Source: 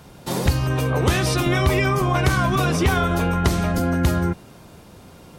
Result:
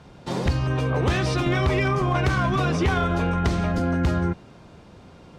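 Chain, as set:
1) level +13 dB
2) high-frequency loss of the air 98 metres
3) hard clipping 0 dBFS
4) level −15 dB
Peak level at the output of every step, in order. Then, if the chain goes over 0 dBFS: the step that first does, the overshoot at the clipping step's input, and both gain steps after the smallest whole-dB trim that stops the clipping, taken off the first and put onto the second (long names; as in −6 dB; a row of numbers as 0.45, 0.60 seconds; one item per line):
+5.5, +5.0, 0.0, −15.0 dBFS
step 1, 5.0 dB
step 1 +8 dB, step 4 −10 dB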